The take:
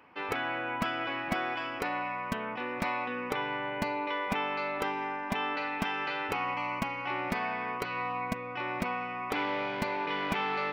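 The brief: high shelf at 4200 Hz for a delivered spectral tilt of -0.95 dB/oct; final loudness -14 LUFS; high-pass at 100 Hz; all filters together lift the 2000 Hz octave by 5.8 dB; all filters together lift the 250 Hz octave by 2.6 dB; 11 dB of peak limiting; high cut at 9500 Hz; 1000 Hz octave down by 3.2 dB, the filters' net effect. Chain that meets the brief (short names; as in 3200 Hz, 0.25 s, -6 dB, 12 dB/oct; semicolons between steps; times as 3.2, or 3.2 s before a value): HPF 100 Hz; LPF 9500 Hz; bell 250 Hz +3.5 dB; bell 1000 Hz -6.5 dB; bell 2000 Hz +7.5 dB; high shelf 4200 Hz +6.5 dB; gain +17.5 dB; limiter -5 dBFS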